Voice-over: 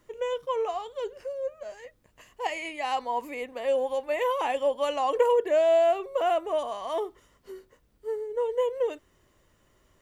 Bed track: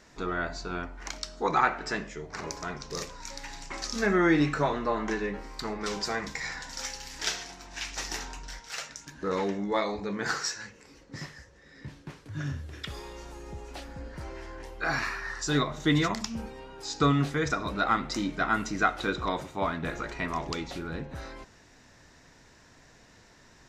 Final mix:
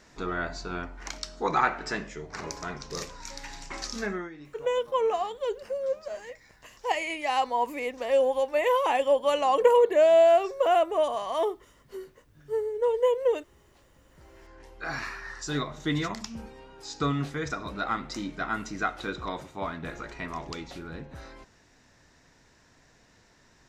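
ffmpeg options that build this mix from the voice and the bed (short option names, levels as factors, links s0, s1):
-filter_complex "[0:a]adelay=4450,volume=1.41[s0];[1:a]volume=8.91,afade=t=out:st=3.82:d=0.48:silence=0.0707946,afade=t=in:st=14.04:d=0.97:silence=0.112202[s1];[s0][s1]amix=inputs=2:normalize=0"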